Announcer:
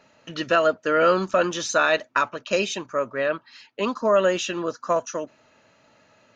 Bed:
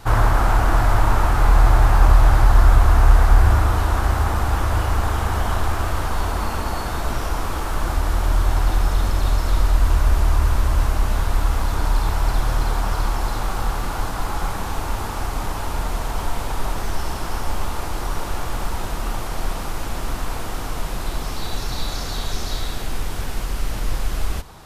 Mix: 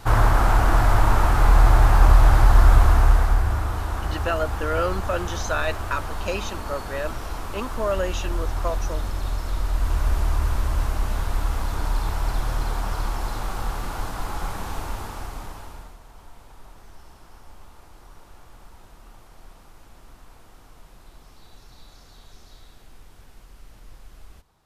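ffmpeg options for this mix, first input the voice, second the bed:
-filter_complex "[0:a]adelay=3750,volume=-6dB[a];[1:a]volume=2dB,afade=t=out:st=2.81:d=0.64:silence=0.446684,afade=t=in:st=9.61:d=0.45:silence=0.707946,afade=t=out:st=14.77:d=1.2:silence=0.133352[b];[a][b]amix=inputs=2:normalize=0"

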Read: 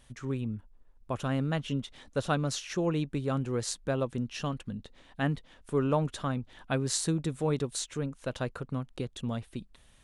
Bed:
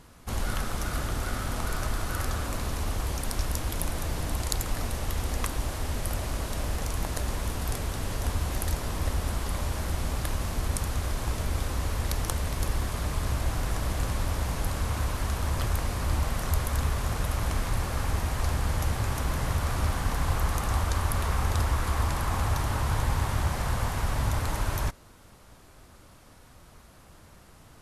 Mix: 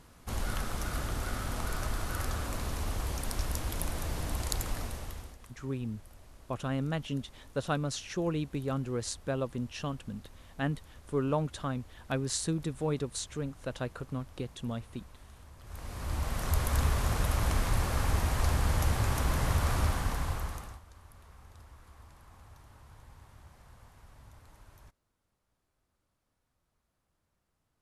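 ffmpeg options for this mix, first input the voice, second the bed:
-filter_complex "[0:a]adelay=5400,volume=-2.5dB[a];[1:a]volume=20dB,afade=t=out:st=4.66:d=0.72:silence=0.0944061,afade=t=in:st=15.63:d=1.14:silence=0.0630957,afade=t=out:st=19.73:d=1.07:silence=0.0446684[b];[a][b]amix=inputs=2:normalize=0"

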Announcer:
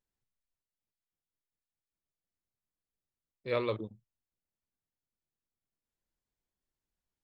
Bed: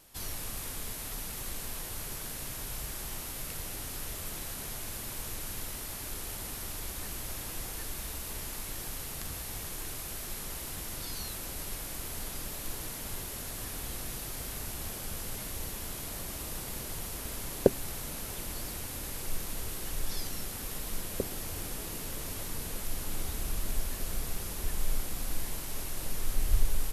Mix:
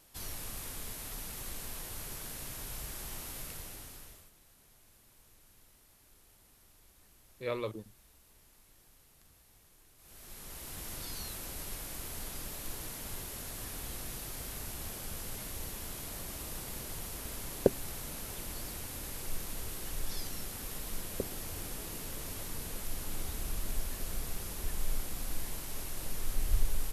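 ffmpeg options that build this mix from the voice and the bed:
-filter_complex "[0:a]adelay=3950,volume=-4dB[a];[1:a]volume=17dB,afade=t=out:st=3.36:d=0.95:silence=0.1,afade=t=in:st=9.97:d=0.93:silence=0.0944061[b];[a][b]amix=inputs=2:normalize=0"

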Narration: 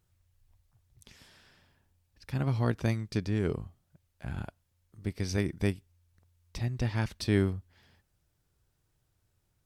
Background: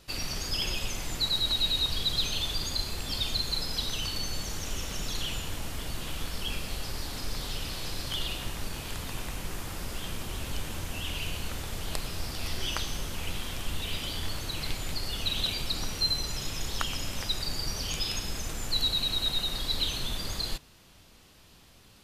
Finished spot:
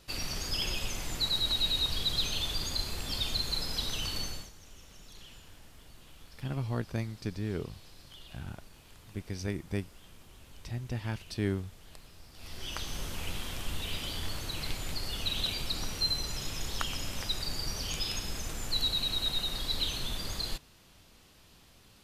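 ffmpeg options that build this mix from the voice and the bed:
-filter_complex "[0:a]adelay=4100,volume=-5dB[a];[1:a]volume=14dB,afade=t=out:st=4.21:d=0.3:silence=0.149624,afade=t=in:st=12.32:d=0.72:silence=0.158489[b];[a][b]amix=inputs=2:normalize=0"

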